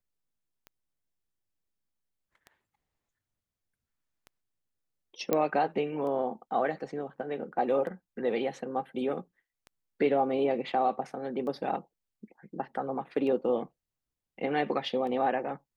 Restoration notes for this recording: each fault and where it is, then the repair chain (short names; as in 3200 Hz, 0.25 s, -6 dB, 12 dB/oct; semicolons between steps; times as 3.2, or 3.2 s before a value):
tick 33 1/3 rpm -31 dBFS
5.33 pop -12 dBFS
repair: de-click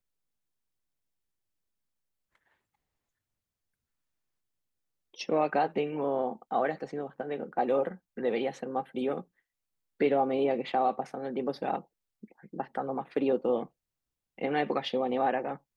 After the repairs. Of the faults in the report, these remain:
none